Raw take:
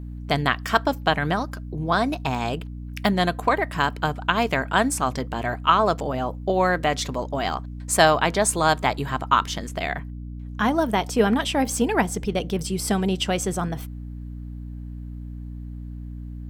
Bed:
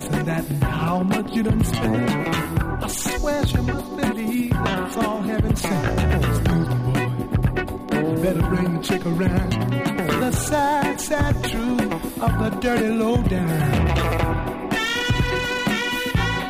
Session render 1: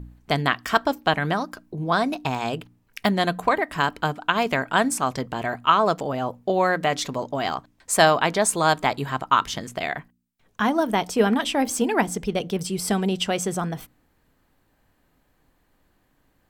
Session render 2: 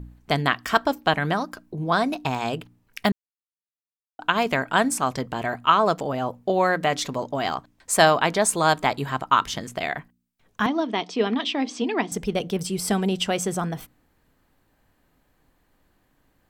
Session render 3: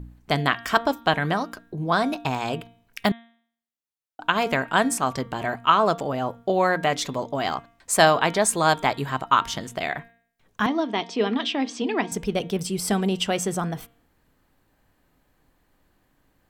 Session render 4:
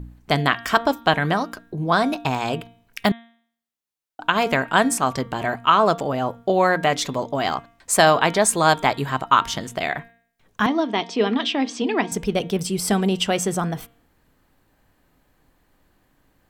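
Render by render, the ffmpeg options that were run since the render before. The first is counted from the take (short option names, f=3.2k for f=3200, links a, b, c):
-af "bandreject=f=60:t=h:w=4,bandreject=f=120:t=h:w=4,bandreject=f=180:t=h:w=4,bandreject=f=240:t=h:w=4,bandreject=f=300:t=h:w=4"
-filter_complex "[0:a]asettb=1/sr,asplit=3[a][b][c];[a]atrim=end=10.664[d];[b]atrim=start=10.66:end=12.12,asetpts=PTS-STARTPTS,afade=t=in:d=0.004:c=qsin,afade=t=out:st=1.456:d=0.004:c=qsin,highpass=f=190:w=0.5412,highpass=f=190:w=1.3066,equalizer=f=200:t=q:w=4:g=-5,equalizer=f=540:t=q:w=4:g=-8,equalizer=f=850:t=q:w=4:g=-6,equalizer=f=1.5k:t=q:w=4:g=-9,equalizer=f=3.6k:t=q:w=4:g=3,lowpass=f=5.2k:w=0.5412,lowpass=f=5.2k:w=1.3066[e];[c]atrim=start=12.116[f];[d][e]acrossfade=d=0.004:c1=hsin:c2=qsin[g];[g][f]acrossfade=d=0.004:c1=qsin:c2=hsin,asplit=3[h][i][j];[h]atrim=end=3.12,asetpts=PTS-STARTPTS,afade=t=out:st=3.116:d=0.004:c=hsin[k];[i]atrim=start=3.12:end=4.19,asetpts=PTS-STARTPTS,volume=0[l];[j]atrim=start=4.19,asetpts=PTS-STARTPTS,afade=t=in:d=0.004:c=hsin[m];[k][l][m]concat=n=3:v=0:a=1"
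-af "bandreject=f=231.5:t=h:w=4,bandreject=f=463:t=h:w=4,bandreject=f=694.5:t=h:w=4,bandreject=f=926:t=h:w=4,bandreject=f=1.1575k:t=h:w=4,bandreject=f=1.389k:t=h:w=4,bandreject=f=1.6205k:t=h:w=4,bandreject=f=1.852k:t=h:w=4,bandreject=f=2.0835k:t=h:w=4,bandreject=f=2.315k:t=h:w=4,bandreject=f=2.5465k:t=h:w=4,bandreject=f=2.778k:t=h:w=4,bandreject=f=3.0095k:t=h:w=4,bandreject=f=3.241k:t=h:w=4,bandreject=f=3.4725k:t=h:w=4,bandreject=f=3.704k:t=h:w=4,bandreject=f=3.9355k:t=h:w=4"
-af "volume=3dB,alimiter=limit=-2dB:level=0:latency=1"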